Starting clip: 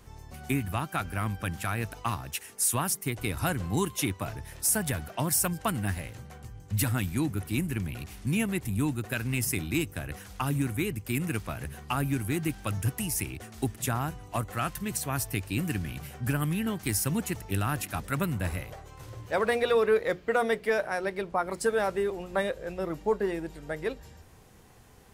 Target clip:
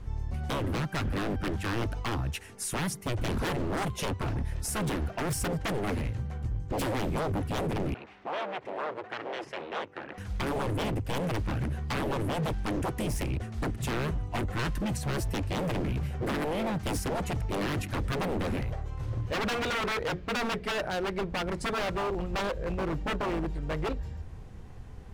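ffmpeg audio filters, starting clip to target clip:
-filter_complex "[0:a]aemphasis=mode=reproduction:type=bsi,aeval=exprs='0.0473*(abs(mod(val(0)/0.0473+3,4)-2)-1)':c=same,asettb=1/sr,asplit=3[a][b][c];[a]atrim=end=7.944[d];[b]atrim=start=7.94:end=10.18,asetpts=PTS-STARTPTS,afade=t=in:d=0.004:c=qsin,afade=t=out:st=2.236:d=0.004:c=qsin,highpass=510,lowpass=2.6k[e];[c]atrim=start=10.176[f];[d][e]acrossfade=d=0.004:c1=hsin:c2=qsin[g];[g][f]acrossfade=d=0.004:c1=qsin:c2=hsin,volume=1.5dB"

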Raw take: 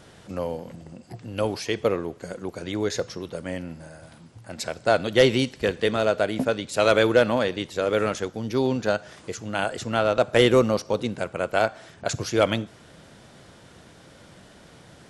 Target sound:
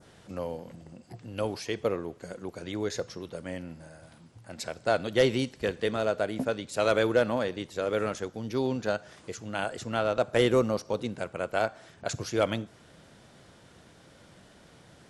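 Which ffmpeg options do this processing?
-af "adynamicequalizer=threshold=0.0112:dfrequency=3000:dqfactor=1:tfrequency=3000:tqfactor=1:attack=5:release=100:ratio=0.375:range=2:mode=cutabove:tftype=bell,volume=-5.5dB"

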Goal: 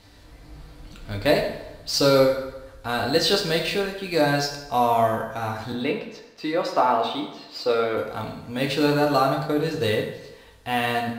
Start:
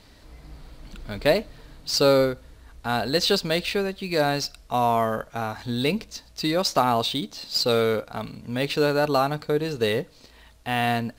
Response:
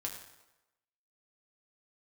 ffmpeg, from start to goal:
-filter_complex "[0:a]asettb=1/sr,asplit=3[a][b][c];[a]atrim=end=5.724[d];[b]atrim=start=5.72:end=7.97,asetpts=PTS-STARTPTS,afade=t=in:d=0.004:c=qsin,afade=t=out:st=2.246:d=0.004:c=qsin,acrossover=split=250 3000:gain=0.2 1 0.158[e][f][g];[e][f][g]amix=inputs=3:normalize=0[h];[c]atrim=start=7.966[i];[d][h]acrossfade=d=0.004:c1=hsin:c2=qsin[j];[j][i]acrossfade=d=0.004:c1=qsin:c2=hsin[k];[1:a]atrim=start_sample=2205[l];[k][l]afir=irnorm=-1:irlink=0,volume=1.5dB"

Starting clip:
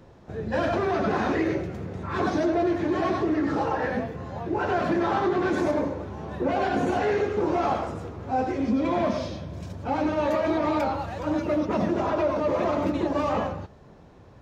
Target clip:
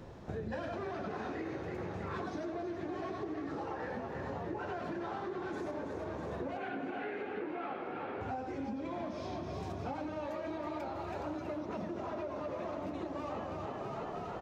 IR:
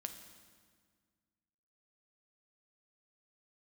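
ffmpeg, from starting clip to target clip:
-filter_complex "[0:a]asettb=1/sr,asplit=3[a][b][c];[a]atrim=end=6.574[d];[b]atrim=start=6.57:end=8.21,asetpts=PTS-STARTPTS,afade=t=in:d=0.004:c=qsin,afade=t=out:st=1.636:d=0.004:c=qsin,highpass=220,equalizer=f=270:t=q:w=4:g=5,equalizer=f=410:t=q:w=4:g=-3,equalizer=f=630:t=q:w=4:g=-4,equalizer=f=1k:t=q:w=4:g=-5,equalizer=f=1.4k:t=q:w=4:g=4,equalizer=f=2.3k:t=q:w=4:g=5,lowpass=f=3.4k:w=0.5412,lowpass=f=3.4k:w=1.3066[e];[c]atrim=start=8.206[f];[d][e]acrossfade=d=0.004:c1=hsin:c2=qsin[g];[g][f]acrossfade=d=0.004:c1=qsin:c2=hsin,asplit=8[h][i][j][k][l][m][n][o];[i]adelay=326,afreqshift=38,volume=-8.5dB[p];[j]adelay=652,afreqshift=76,volume=-13.4dB[q];[k]adelay=978,afreqshift=114,volume=-18.3dB[r];[l]adelay=1304,afreqshift=152,volume=-23.1dB[s];[m]adelay=1630,afreqshift=190,volume=-28dB[t];[n]adelay=1956,afreqshift=228,volume=-32.9dB[u];[o]adelay=2282,afreqshift=266,volume=-37.8dB[v];[h][p][q][r][s][t][u][v]amix=inputs=8:normalize=0,acompressor=threshold=-37dB:ratio=16,volume=1dB"

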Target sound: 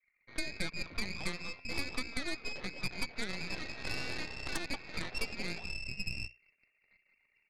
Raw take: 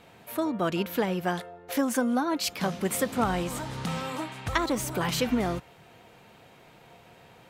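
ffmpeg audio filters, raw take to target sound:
-filter_complex "[0:a]acrossover=split=260|2100[a][b][c];[c]adelay=180[d];[a]adelay=670[e];[e][b][d]amix=inputs=3:normalize=0,anlmdn=0.00631,equalizer=f=210:w=1.1:g=-5,bandreject=f=60:t=h:w=6,bandreject=f=120:t=h:w=6,bandreject=f=180:t=h:w=6,bandreject=f=240:t=h:w=6,bandreject=f=300:t=h:w=6,bandreject=f=360:t=h:w=6,bandreject=f=420:t=h:w=6,bandreject=f=480:t=h:w=6,bandreject=f=540:t=h:w=6,bandreject=f=600:t=h:w=6,acompressor=threshold=-32dB:ratio=10,lowpass=f=2.4k:t=q:w=0.5098,lowpass=f=2.4k:t=q:w=0.6013,lowpass=f=2.4k:t=q:w=0.9,lowpass=f=2.4k:t=q:w=2.563,afreqshift=-2800,aeval=exprs='0.0891*(cos(1*acos(clip(val(0)/0.0891,-1,1)))-cos(1*PI/2))+0.0282*(cos(5*acos(clip(val(0)/0.0891,-1,1)))-cos(5*PI/2))+0.0316*(cos(6*acos(clip(val(0)/0.0891,-1,1)))-cos(6*PI/2))+0.02*(cos(7*acos(clip(val(0)/0.0891,-1,1)))-cos(7*PI/2))+0.00708*(cos(8*acos(clip(val(0)/0.0891,-1,1)))-cos(8*PI/2))':c=same,equalizer=f=1.7k:w=0.47:g=-12.5,volume=2.5dB"

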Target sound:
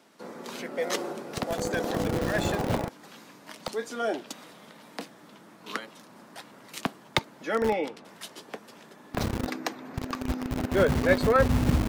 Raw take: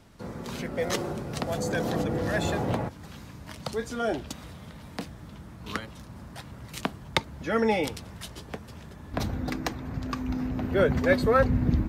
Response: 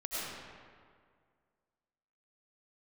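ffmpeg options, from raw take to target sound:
-filter_complex "[0:a]asettb=1/sr,asplit=3[a][b][c];[a]atrim=end=7.564[d];[b]atrim=start=7.56:end=8.05,asetpts=PTS-STARTPTS,afade=t=in:d=0.004:c=qsin,afade=t=out:st=0.486:d=0.004:c=qsin,lowpass=f=1.5k:p=1[e];[c]atrim=start=8.046[f];[d][e]acrossfade=d=0.004:c1=hsin:c2=qsin[g];[g][f]acrossfade=d=0.004:c1=qsin:c2=hsin,acrossover=split=220[h][i];[h]acrusher=bits=4:mix=0:aa=0.000001[j];[j][i]amix=inputs=2:normalize=0"

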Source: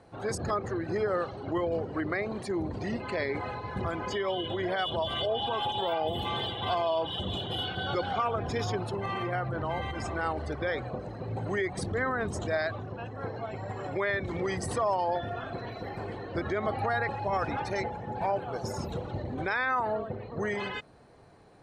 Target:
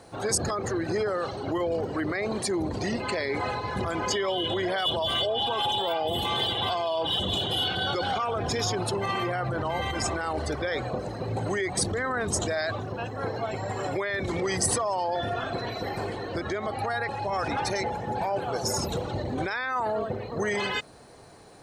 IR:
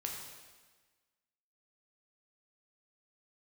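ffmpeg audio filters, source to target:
-filter_complex "[0:a]asettb=1/sr,asplit=3[a][b][c];[a]atrim=end=16.074[d];[b]atrim=start=16.07:end=17.36,asetpts=PTS-STARTPTS,afade=t=in:d=0.004:c=qsin,afade=t=out:st=1.286:d=0.004:c=qsin,acompressor=threshold=-35dB:ratio=2.5[e];[c]atrim=start=17.356[f];[d][e]acrossfade=d=0.004:c1=hsin:c2=qsin[g];[g][f]acrossfade=d=0.004:c1=qsin:c2=hsin,alimiter=level_in=2.5dB:limit=-24dB:level=0:latency=1:release=19,volume=-2.5dB,bass=f=250:g=-3,treble=f=4k:g=11,volume=6.5dB"

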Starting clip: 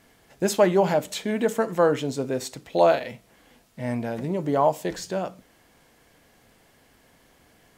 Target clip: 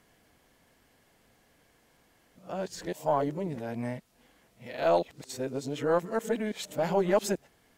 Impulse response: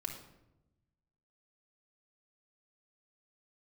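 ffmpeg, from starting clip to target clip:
-af "areverse,aeval=exprs='0.473*(cos(1*acos(clip(val(0)/0.473,-1,1)))-cos(1*PI/2))+0.0133*(cos(4*acos(clip(val(0)/0.473,-1,1)))-cos(4*PI/2))':c=same,volume=-6.5dB"

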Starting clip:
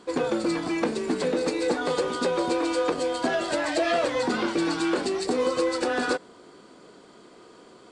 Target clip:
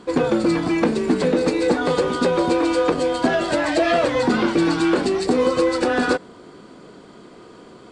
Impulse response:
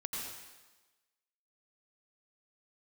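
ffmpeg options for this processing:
-af "bass=f=250:g=7,treble=f=4k:g=-4,volume=5.5dB"

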